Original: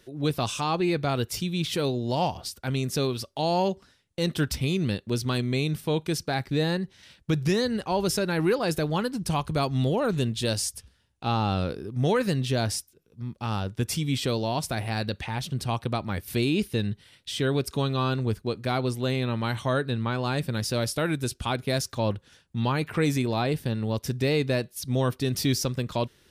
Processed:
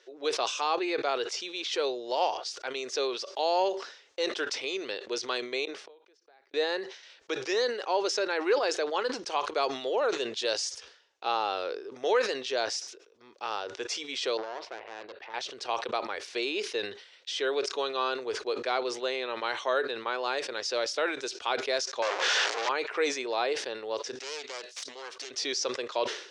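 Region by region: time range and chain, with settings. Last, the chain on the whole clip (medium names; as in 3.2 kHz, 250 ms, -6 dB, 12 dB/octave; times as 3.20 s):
5.65–6.54 s: high-pass 170 Hz + treble shelf 3.5 kHz -10 dB + inverted gate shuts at -29 dBFS, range -30 dB
14.37–15.34 s: distance through air 380 m + valve stage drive 31 dB, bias 0.8
22.02–22.69 s: one-bit comparator + bass shelf 150 Hz -7.5 dB + overdrive pedal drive 16 dB, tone 4.4 kHz, clips at -16.5 dBFS
24.15–25.31 s: self-modulated delay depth 0.32 ms + compression 8:1, threshold -31 dBFS + tilt EQ +3 dB/octave
whole clip: elliptic band-pass 420–6300 Hz, stop band 40 dB; decay stretcher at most 92 dB/s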